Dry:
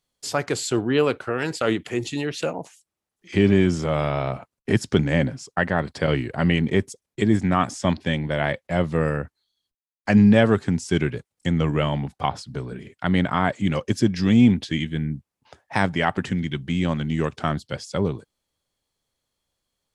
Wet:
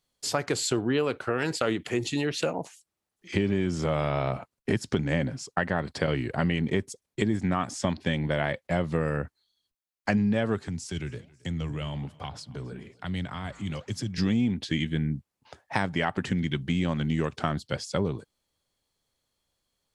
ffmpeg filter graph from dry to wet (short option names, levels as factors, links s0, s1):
-filter_complex "[0:a]asettb=1/sr,asplit=3[s0][s1][s2];[s0]atrim=end=10.684[s3];[s1]atrim=start=10.68:end=14.18,asetpts=PTS-STARTPTS,afade=t=in:d=0.004:c=qsin,afade=t=out:st=3.496:d=0.004:c=qsin,flanger=delay=0.1:depth=9:regen=-89:speed=1.2:shape=sinusoidal,acrossover=split=130|3000[s4][s5][s6];[s5]acompressor=threshold=0.0178:ratio=5:attack=3.2:release=140:knee=2.83:detection=peak[s7];[s4][s7][s6]amix=inputs=3:normalize=0,aecho=1:1:272|544|816:0.0668|0.0341|0.0174,atrim=end_sample=154350[s8];[s2]atrim=start=14.176[s9];[s3][s8]acrossfade=d=0.004:c1=hsin:c2=qsin[s10];[s10][s9]acrossfade=d=0.004:c1=qsin:c2=hsin,equalizer=f=4300:w=7.8:g=2,acompressor=threshold=0.0794:ratio=6"